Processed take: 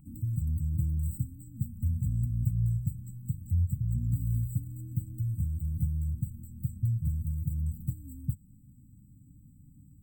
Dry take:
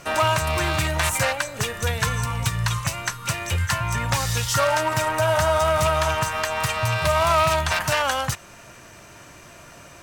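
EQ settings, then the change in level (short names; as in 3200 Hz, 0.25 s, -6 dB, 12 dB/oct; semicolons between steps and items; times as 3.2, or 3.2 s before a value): brick-wall FIR band-stop 300–7600 Hz; band shelf 7900 Hz -13 dB; fixed phaser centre 2500 Hz, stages 8; -2.0 dB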